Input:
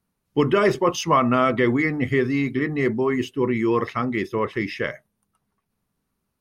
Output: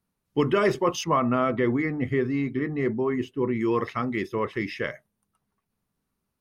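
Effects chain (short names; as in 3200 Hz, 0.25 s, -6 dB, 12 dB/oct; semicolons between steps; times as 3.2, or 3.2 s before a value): 1.04–3.61 high shelf 2400 Hz -10 dB; gain -3.5 dB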